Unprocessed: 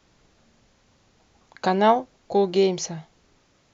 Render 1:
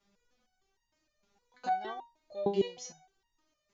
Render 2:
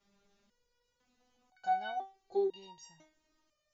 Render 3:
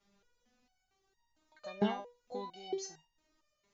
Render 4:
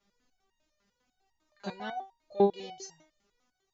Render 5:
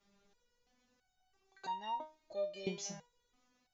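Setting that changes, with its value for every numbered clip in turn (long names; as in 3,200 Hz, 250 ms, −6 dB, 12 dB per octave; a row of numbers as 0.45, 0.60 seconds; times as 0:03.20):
step-sequenced resonator, speed: 6.5, 2, 4.4, 10, 3 Hertz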